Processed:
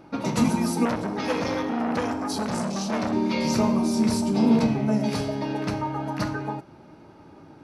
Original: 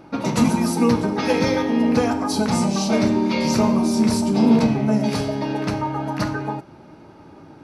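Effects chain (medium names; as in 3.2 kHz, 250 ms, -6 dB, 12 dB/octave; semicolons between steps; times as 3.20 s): 0.85–3.13 s: transformer saturation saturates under 1.2 kHz; trim -4 dB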